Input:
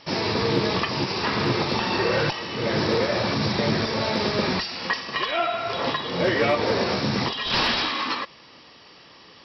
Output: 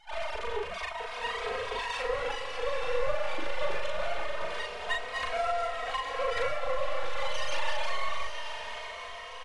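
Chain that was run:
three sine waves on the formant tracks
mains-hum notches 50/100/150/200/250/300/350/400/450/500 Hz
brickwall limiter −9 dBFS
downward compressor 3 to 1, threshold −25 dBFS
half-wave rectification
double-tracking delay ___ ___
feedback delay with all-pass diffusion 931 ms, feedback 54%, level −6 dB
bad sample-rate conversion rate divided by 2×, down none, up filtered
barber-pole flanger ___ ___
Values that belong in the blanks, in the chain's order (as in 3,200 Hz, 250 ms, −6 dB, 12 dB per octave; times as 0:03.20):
39 ms, −2.5 dB, 2.9 ms, +0.25 Hz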